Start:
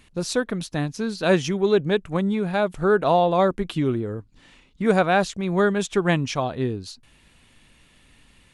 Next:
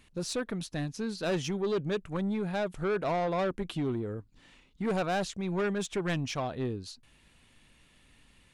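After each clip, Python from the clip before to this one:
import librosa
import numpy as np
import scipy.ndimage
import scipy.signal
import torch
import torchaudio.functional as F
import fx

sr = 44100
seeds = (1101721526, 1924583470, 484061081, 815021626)

y = 10.0 ** (-19.0 / 20.0) * np.tanh(x / 10.0 ** (-19.0 / 20.0))
y = F.gain(torch.from_numpy(y), -6.0).numpy()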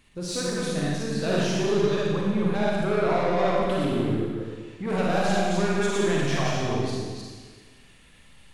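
y = fx.reverse_delay(x, sr, ms=164, wet_db=-1)
y = fx.rev_schroeder(y, sr, rt60_s=1.5, comb_ms=38, drr_db=-3.5)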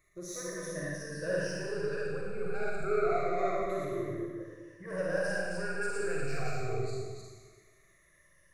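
y = fx.spec_ripple(x, sr, per_octave=1.2, drift_hz=-0.26, depth_db=16)
y = fx.fixed_phaser(y, sr, hz=880.0, stages=6)
y = F.gain(torch.from_numpy(y), -8.5).numpy()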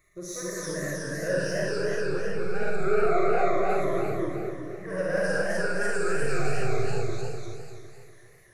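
y = fx.echo_warbled(x, sr, ms=251, feedback_pct=51, rate_hz=2.8, cents=195, wet_db=-3.5)
y = F.gain(torch.from_numpy(y), 4.5).numpy()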